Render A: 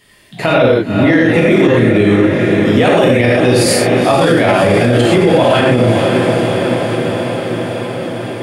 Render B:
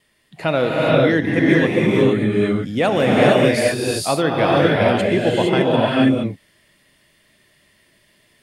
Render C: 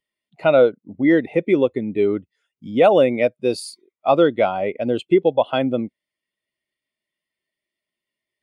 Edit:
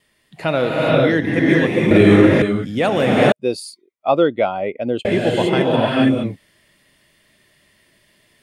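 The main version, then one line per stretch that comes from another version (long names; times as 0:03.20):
B
0:01.91–0:02.42: punch in from A
0:03.32–0:05.05: punch in from C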